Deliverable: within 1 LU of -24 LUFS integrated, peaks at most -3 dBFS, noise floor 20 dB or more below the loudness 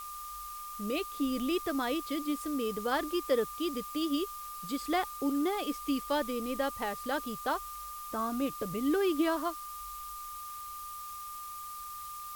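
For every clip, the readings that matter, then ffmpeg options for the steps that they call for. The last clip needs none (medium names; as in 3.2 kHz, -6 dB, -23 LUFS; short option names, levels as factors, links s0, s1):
steady tone 1.2 kHz; tone level -41 dBFS; noise floor -43 dBFS; noise floor target -54 dBFS; loudness -34.0 LUFS; peak level -17.0 dBFS; loudness target -24.0 LUFS
-> -af "bandreject=f=1200:w=30"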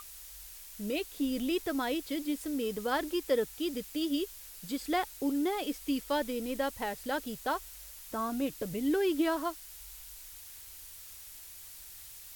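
steady tone not found; noise floor -49 dBFS; noise floor target -53 dBFS
-> -af "afftdn=nr=6:nf=-49"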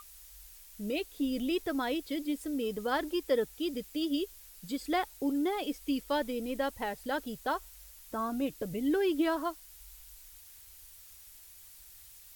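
noise floor -54 dBFS; loudness -33.5 LUFS; peak level -17.5 dBFS; loudness target -24.0 LUFS
-> -af "volume=2.99"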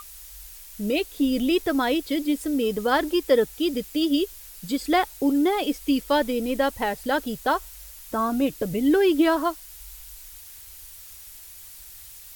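loudness -24.0 LUFS; peak level -8.0 dBFS; noise floor -44 dBFS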